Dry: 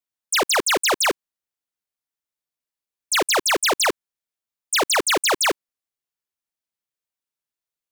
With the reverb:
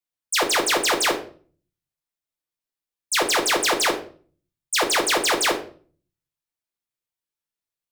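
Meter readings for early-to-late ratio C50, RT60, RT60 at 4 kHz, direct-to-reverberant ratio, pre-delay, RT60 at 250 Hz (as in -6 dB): 10.5 dB, 0.45 s, 0.35 s, 2.0 dB, 6 ms, 0.65 s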